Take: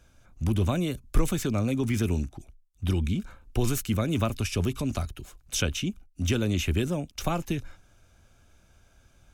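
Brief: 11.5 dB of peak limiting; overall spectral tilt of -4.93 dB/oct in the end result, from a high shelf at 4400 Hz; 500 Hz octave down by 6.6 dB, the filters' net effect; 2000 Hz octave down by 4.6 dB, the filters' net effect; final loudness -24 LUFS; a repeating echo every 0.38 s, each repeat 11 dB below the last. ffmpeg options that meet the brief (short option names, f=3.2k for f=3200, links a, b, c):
-af "equalizer=f=500:t=o:g=-9,equalizer=f=2k:t=o:g=-8.5,highshelf=f=4.4k:g=8.5,alimiter=limit=-21dB:level=0:latency=1,aecho=1:1:380|760|1140:0.282|0.0789|0.0221,volume=7.5dB"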